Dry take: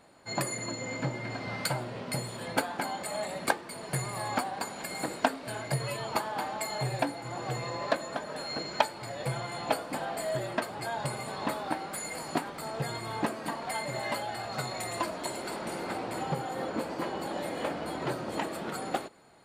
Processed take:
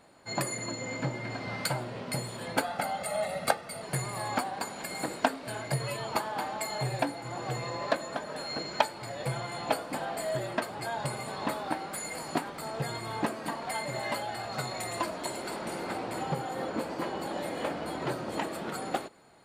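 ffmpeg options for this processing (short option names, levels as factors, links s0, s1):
-filter_complex "[0:a]asettb=1/sr,asplit=3[s0][s1][s2];[s0]atrim=end=2.644[s3];[s1]atrim=start=2.64:end=3.82,asetpts=PTS-STARTPTS,afade=t=in:d=0.004:c=qsin,afade=t=out:st=1.176:d=0.004:c=qsin,aecho=1:1:1.5:0.65,atrim=end_sample=52038[s4];[s2]atrim=start=3.816[s5];[s3][s4]acrossfade=d=0.004:c1=hsin:c2=qsin[s6];[s6][s5]acrossfade=d=0.004:c1=qsin:c2=hsin"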